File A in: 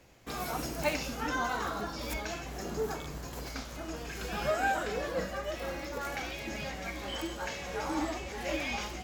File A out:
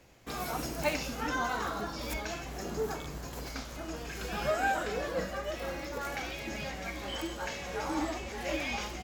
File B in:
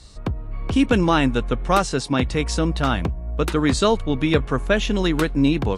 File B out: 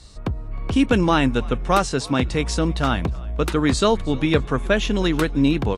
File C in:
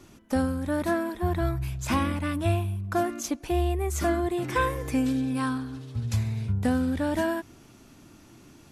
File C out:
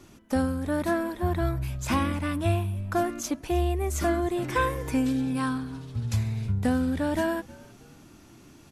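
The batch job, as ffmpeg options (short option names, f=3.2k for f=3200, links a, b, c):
-filter_complex "[0:a]asplit=4[a][b][c][d];[b]adelay=312,afreqshift=-91,volume=-23dB[e];[c]adelay=624,afreqshift=-182,volume=-31dB[f];[d]adelay=936,afreqshift=-273,volume=-38.9dB[g];[a][e][f][g]amix=inputs=4:normalize=0"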